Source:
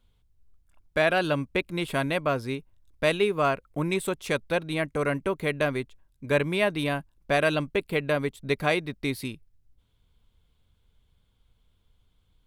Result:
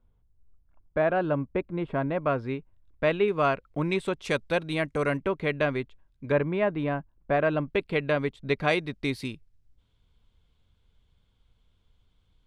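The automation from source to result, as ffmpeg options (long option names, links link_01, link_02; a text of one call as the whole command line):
ffmpeg -i in.wav -af "asetnsamples=nb_out_samples=441:pad=0,asendcmd='2.22 lowpass f 2200;3.28 lowpass f 4500;4.25 lowpass f 7700;5.17 lowpass f 3700;6.32 lowpass f 1500;7.68 lowpass f 4000;8.68 lowpass f 7000',lowpass=1200" out.wav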